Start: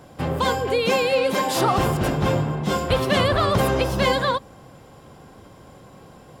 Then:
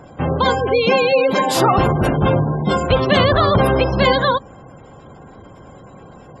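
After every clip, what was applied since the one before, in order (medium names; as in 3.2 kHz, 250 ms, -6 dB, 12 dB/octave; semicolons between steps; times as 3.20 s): spectral gate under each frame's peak -25 dB strong; trim +5.5 dB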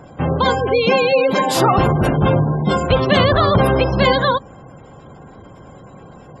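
peaking EQ 150 Hz +2 dB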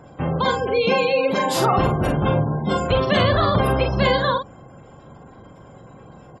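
doubling 44 ms -5.5 dB; trim -5 dB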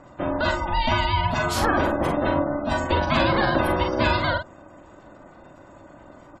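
ring modulator 440 Hz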